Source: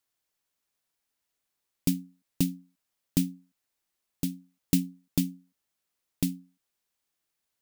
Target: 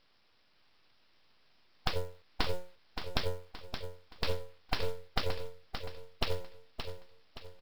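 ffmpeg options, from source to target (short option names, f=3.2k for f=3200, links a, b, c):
-filter_complex "[0:a]afftfilt=real='re*lt(hypot(re,im),0.2)':imag='im*lt(hypot(re,im),0.2)':win_size=1024:overlap=0.75,adynamicequalizer=threshold=0.00224:dfrequency=720:dqfactor=1.7:tfrequency=720:tqfactor=1.7:attack=5:release=100:ratio=0.375:range=2.5:mode=boostabove:tftype=bell,acompressor=threshold=-31dB:ratio=6,asplit=2[a][b];[b]highpass=f=720:p=1,volume=20dB,asoftclip=type=tanh:threshold=-6dB[c];[a][c]amix=inputs=2:normalize=0,lowpass=f=3.3k:p=1,volume=-6dB,acontrast=73,alimiter=limit=-14.5dB:level=0:latency=1:release=452,aresample=11025,aeval=exprs='abs(val(0))':c=same,aresample=44100,acrusher=bits=6:mode=log:mix=0:aa=0.000001,asplit=2[d][e];[e]aecho=0:1:572|1144|1716|2288|2860:0.398|0.159|0.0637|0.0255|0.0102[f];[d][f]amix=inputs=2:normalize=0,volume=3dB"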